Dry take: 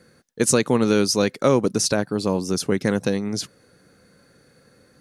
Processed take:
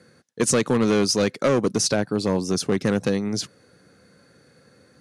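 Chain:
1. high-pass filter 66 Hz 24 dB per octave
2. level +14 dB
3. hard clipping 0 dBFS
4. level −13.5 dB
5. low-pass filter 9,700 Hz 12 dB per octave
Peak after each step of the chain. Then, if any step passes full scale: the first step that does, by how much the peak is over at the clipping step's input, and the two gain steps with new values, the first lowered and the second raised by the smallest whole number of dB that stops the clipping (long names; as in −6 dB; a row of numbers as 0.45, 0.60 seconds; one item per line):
−5.0, +9.0, 0.0, −13.5, −12.5 dBFS
step 2, 9.0 dB
step 2 +5 dB, step 4 −4.5 dB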